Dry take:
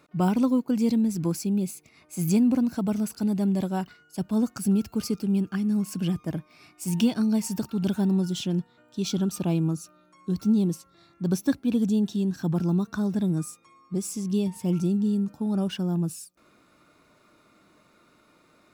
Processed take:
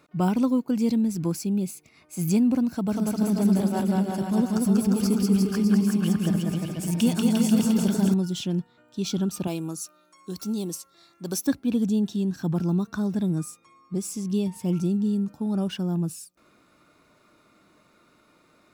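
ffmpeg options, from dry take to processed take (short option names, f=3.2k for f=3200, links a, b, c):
-filter_complex "[0:a]asettb=1/sr,asplit=3[a][b][c];[a]atrim=end=2.704[d];[b]atrim=start=2.7:end=8.14,asetpts=PTS-STARTPTS,afade=t=in:d=0.004:c=qsin,afade=t=out:st=5.436:d=0.004:c=qsin,aecho=1:1:190|351.5|488.8|605.5|704.6|788.9:0.794|0.631|0.501|0.398|0.316|0.251,atrim=end_sample=239904[e];[c]atrim=start=8.136[f];[d][e]acrossfade=d=0.004:c1=hsin:c2=qsin[g];[g][f]acrossfade=d=0.004:c1=qsin:c2=hsin,asettb=1/sr,asplit=3[h][i][j];[h]atrim=end=9.474[k];[i]atrim=start=9.47:end=11.47,asetpts=PTS-STARTPTS,afade=t=in:d=0.004:c=qsin,afade=t=out:st=1.996:d=0.004:c=qsin,bass=f=250:g=-12,treble=f=4k:g=9[l];[j]atrim=start=11.466[m];[k][l]acrossfade=d=0.004:c1=hsin:c2=qsin[n];[n][m]acrossfade=d=0.004:c1=qsin:c2=hsin"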